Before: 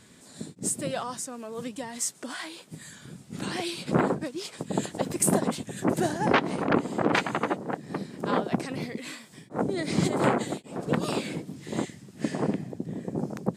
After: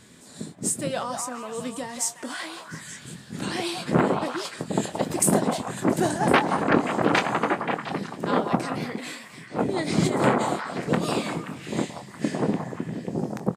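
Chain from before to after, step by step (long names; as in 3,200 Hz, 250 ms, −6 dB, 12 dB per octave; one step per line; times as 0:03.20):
double-tracking delay 24 ms −11.5 dB
echo through a band-pass that steps 176 ms, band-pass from 880 Hz, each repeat 0.7 octaves, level −3 dB
level +2.5 dB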